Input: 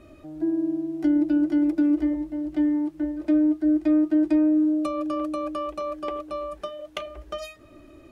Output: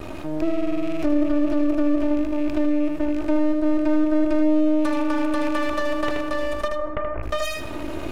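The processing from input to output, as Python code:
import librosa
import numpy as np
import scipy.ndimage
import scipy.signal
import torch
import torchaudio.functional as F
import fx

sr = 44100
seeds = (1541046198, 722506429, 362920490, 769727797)

y = fx.rattle_buzz(x, sr, strikes_db=-39.0, level_db=-30.0)
y = fx.recorder_agc(y, sr, target_db=-17.5, rise_db_per_s=7.6, max_gain_db=30)
y = np.maximum(y, 0.0)
y = fx.lowpass(y, sr, hz=1700.0, slope=24, at=(6.67, 7.22), fade=0.02)
y = y + 10.0 ** (-7.5 / 20.0) * np.pad(y, (int(78 * sr / 1000.0), 0))[:len(y)]
y = fx.rev_plate(y, sr, seeds[0], rt60_s=0.57, hf_ratio=0.65, predelay_ms=80, drr_db=17.0)
y = fx.env_flatten(y, sr, amount_pct=50)
y = y * 10.0 ** (2.0 / 20.0)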